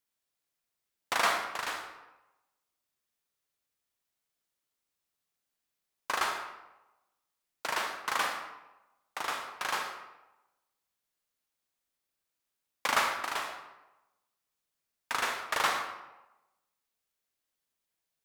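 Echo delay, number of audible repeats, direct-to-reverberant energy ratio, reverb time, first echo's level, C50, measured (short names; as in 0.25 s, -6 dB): none, none, 4.0 dB, 1.0 s, none, 5.0 dB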